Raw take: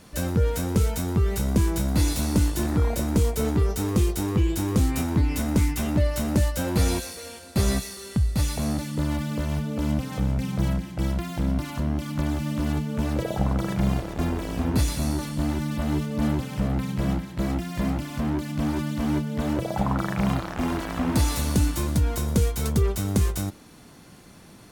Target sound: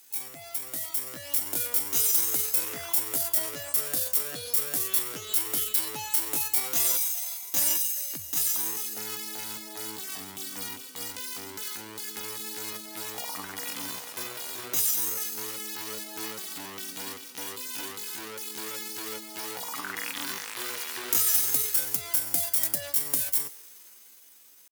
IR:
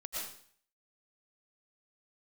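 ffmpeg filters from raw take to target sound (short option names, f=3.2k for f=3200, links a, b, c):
-filter_complex "[0:a]aderivative,dynaudnorm=f=130:g=17:m=7.5dB,aeval=exprs='0.335*(cos(1*acos(clip(val(0)/0.335,-1,1)))-cos(1*PI/2))+0.0211*(cos(2*acos(clip(val(0)/0.335,-1,1)))-cos(2*PI/2))':c=same,highpass=f=60:w=0.5412,highpass=f=60:w=1.3066,asetrate=64194,aresample=44100,atempo=0.686977,asplit=2[a][b];[1:a]atrim=start_sample=2205[c];[b][c]afir=irnorm=-1:irlink=0,volume=-21.5dB[d];[a][d]amix=inputs=2:normalize=0,volume=3dB"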